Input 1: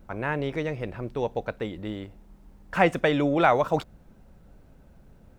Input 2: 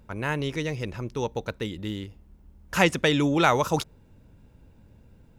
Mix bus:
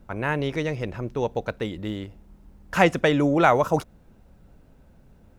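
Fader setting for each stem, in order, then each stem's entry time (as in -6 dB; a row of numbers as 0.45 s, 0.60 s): -1.0 dB, -6.0 dB; 0.00 s, 0.00 s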